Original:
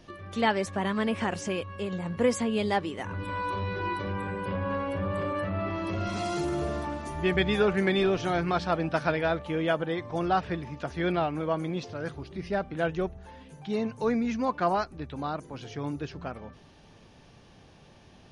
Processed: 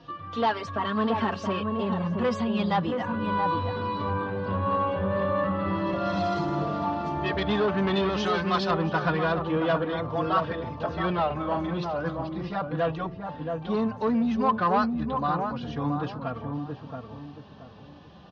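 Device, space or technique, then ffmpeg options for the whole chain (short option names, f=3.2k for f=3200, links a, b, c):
barber-pole flanger into a guitar amplifier: -filter_complex "[0:a]asplit=2[a][b];[b]adelay=3.7,afreqshift=-0.32[c];[a][c]amix=inputs=2:normalize=1,asoftclip=type=tanh:threshold=-25.5dB,highpass=75,equalizer=f=360:t=q:w=4:g=-6,equalizer=f=1.1k:t=q:w=4:g=6,equalizer=f=2.2k:t=q:w=4:g=-8,lowpass=f=4.4k:w=0.5412,lowpass=f=4.4k:w=1.3066,asettb=1/sr,asplit=3[d][e][f];[d]atrim=end=8.094[g];[e]atrim=start=8.09:end=8.71,asetpts=PTS-STARTPTS,afade=t=in:d=0.004:c=qsin,afade=t=out:st=0.616:d=0.004:c=qsin,aemphasis=mode=production:type=riaa[h];[f]atrim=start=8.706[i];[g][h]acrossfade=d=0.004:c1=hsin:c2=qsin[j];[j][i]acrossfade=d=0.004:c1=qsin:c2=hsin,asettb=1/sr,asplit=3[k][l][m];[k]atrim=end=11.264[n];[l]atrim=start=11.26:end=11.74,asetpts=PTS-STARTPTS,afade=t=in:d=0.004:c=qsin,afade=t=out:st=0.476:d=0.004:c=qsin,asplit=2[o][p];[p]adelay=41,volume=-5dB[q];[o][q]amix=inputs=2:normalize=0,atrim=end_sample=21168[r];[m]atrim=start=11.736[s];[n][r]acrossfade=d=0.004:c1=hsin:c2=qsin[t];[t][s]acrossfade=d=0.004:c1=qsin:c2=hsin,asplit=2[u][v];[v]adelay=676,lowpass=f=860:p=1,volume=-3.5dB,asplit=2[w][x];[x]adelay=676,lowpass=f=860:p=1,volume=0.35,asplit=2[y][z];[z]adelay=676,lowpass=f=860:p=1,volume=0.35,asplit=2[aa][ab];[ab]adelay=676,lowpass=f=860:p=1,volume=0.35,asplit=2[ac][ad];[ad]adelay=676,lowpass=f=860:p=1,volume=0.35[ae];[u][w][y][aa][ac][ae]amix=inputs=6:normalize=0,volume=7dB"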